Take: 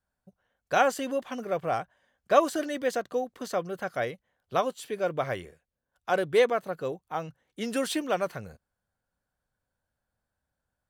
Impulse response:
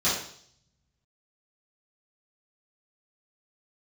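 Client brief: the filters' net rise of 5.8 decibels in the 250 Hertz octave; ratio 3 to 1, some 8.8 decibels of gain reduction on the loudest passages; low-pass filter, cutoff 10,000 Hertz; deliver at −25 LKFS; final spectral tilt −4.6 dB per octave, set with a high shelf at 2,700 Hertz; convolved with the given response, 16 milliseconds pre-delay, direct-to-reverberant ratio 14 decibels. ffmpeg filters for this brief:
-filter_complex "[0:a]lowpass=10000,equalizer=frequency=250:width_type=o:gain=7,highshelf=frequency=2700:gain=4.5,acompressor=threshold=-25dB:ratio=3,asplit=2[link_01][link_02];[1:a]atrim=start_sample=2205,adelay=16[link_03];[link_02][link_03]afir=irnorm=-1:irlink=0,volume=-27dB[link_04];[link_01][link_04]amix=inputs=2:normalize=0,volume=6dB"

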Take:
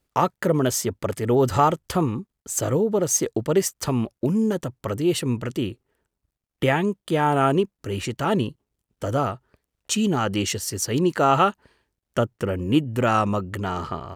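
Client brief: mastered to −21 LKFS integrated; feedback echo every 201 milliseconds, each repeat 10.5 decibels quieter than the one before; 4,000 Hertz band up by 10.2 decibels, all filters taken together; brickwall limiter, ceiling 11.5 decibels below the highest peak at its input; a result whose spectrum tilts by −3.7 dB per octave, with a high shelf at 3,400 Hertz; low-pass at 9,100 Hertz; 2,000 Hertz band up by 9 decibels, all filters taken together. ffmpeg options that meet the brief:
ffmpeg -i in.wav -af "lowpass=9100,equalizer=frequency=2000:width_type=o:gain=8,highshelf=frequency=3400:gain=8.5,equalizer=frequency=4000:width_type=o:gain=5,alimiter=limit=-11dB:level=0:latency=1,aecho=1:1:201|402|603:0.299|0.0896|0.0269,volume=1.5dB" out.wav

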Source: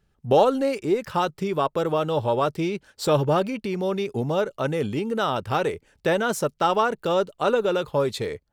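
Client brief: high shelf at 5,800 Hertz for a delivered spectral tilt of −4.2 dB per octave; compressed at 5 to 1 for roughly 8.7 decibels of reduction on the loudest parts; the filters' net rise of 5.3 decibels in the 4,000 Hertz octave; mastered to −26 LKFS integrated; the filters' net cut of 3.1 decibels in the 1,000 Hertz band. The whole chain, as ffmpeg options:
ffmpeg -i in.wav -af "equalizer=frequency=1000:width_type=o:gain=-4.5,equalizer=frequency=4000:width_type=o:gain=8,highshelf=frequency=5800:gain=-3.5,acompressor=threshold=-24dB:ratio=5,volume=3dB" out.wav

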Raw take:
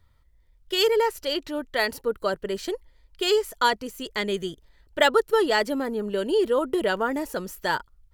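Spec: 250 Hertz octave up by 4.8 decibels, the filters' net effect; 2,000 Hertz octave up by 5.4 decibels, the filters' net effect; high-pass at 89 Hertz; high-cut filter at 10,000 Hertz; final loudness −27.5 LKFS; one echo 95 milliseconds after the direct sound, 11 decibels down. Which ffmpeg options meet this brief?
ffmpeg -i in.wav -af "highpass=89,lowpass=10000,equalizer=frequency=250:width_type=o:gain=6.5,equalizer=frequency=2000:width_type=o:gain=6.5,aecho=1:1:95:0.282,volume=-5.5dB" out.wav

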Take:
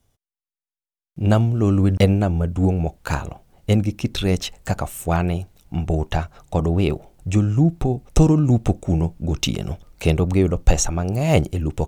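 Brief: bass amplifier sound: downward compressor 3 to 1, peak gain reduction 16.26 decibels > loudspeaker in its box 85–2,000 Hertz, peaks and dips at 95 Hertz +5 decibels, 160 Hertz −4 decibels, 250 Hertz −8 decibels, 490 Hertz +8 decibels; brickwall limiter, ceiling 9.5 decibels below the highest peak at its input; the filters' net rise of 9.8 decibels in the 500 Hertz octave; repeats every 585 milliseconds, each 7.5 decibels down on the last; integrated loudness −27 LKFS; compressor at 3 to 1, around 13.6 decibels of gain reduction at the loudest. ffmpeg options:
ffmpeg -i in.wav -af "equalizer=frequency=500:width_type=o:gain=6.5,acompressor=threshold=-26dB:ratio=3,alimiter=limit=-19.5dB:level=0:latency=1,aecho=1:1:585|1170|1755|2340|2925:0.422|0.177|0.0744|0.0312|0.0131,acompressor=threshold=-44dB:ratio=3,highpass=frequency=85:width=0.5412,highpass=frequency=85:width=1.3066,equalizer=frequency=95:width_type=q:width=4:gain=5,equalizer=frequency=160:width_type=q:width=4:gain=-4,equalizer=frequency=250:width_type=q:width=4:gain=-8,equalizer=frequency=490:width_type=q:width=4:gain=8,lowpass=frequency=2000:width=0.5412,lowpass=frequency=2000:width=1.3066,volume=15.5dB" out.wav

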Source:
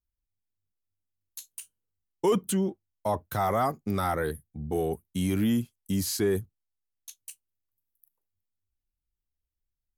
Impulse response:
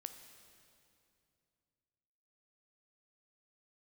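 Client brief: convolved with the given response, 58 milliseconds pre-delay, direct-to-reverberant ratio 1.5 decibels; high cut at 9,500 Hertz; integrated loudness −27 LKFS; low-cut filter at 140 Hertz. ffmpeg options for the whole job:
-filter_complex "[0:a]highpass=140,lowpass=9500,asplit=2[link_01][link_02];[1:a]atrim=start_sample=2205,adelay=58[link_03];[link_02][link_03]afir=irnorm=-1:irlink=0,volume=2.5dB[link_04];[link_01][link_04]amix=inputs=2:normalize=0,volume=0.5dB"

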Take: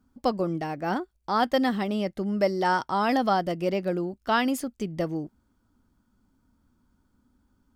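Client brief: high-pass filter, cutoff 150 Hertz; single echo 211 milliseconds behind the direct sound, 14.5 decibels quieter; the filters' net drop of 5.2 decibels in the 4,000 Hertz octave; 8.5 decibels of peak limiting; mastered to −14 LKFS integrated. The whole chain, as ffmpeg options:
ffmpeg -i in.wav -af "highpass=150,equalizer=frequency=4000:width_type=o:gain=-7.5,alimiter=limit=-20dB:level=0:latency=1,aecho=1:1:211:0.188,volume=16dB" out.wav

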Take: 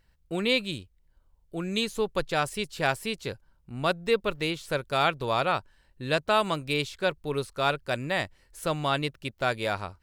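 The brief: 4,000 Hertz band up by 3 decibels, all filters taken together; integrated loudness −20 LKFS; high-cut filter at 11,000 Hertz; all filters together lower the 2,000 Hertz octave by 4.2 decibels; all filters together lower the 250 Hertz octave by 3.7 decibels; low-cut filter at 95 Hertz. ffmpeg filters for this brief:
ffmpeg -i in.wav -af "highpass=95,lowpass=11000,equalizer=frequency=250:width_type=o:gain=-5,equalizer=frequency=2000:width_type=o:gain=-8,equalizer=frequency=4000:width_type=o:gain=6,volume=9.5dB" out.wav

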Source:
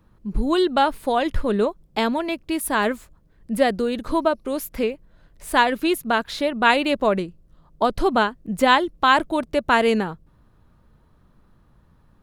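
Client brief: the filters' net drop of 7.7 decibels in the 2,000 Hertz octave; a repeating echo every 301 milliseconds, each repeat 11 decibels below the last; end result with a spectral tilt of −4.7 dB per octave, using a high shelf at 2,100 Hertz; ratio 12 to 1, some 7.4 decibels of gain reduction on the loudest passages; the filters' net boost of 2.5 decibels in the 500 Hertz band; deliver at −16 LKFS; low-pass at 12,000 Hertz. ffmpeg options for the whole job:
ffmpeg -i in.wav -af "lowpass=12000,equalizer=frequency=500:width_type=o:gain=4,equalizer=frequency=2000:width_type=o:gain=-7.5,highshelf=frequency=2100:gain=-6.5,acompressor=threshold=-18dB:ratio=12,aecho=1:1:301|602|903:0.282|0.0789|0.0221,volume=9dB" out.wav

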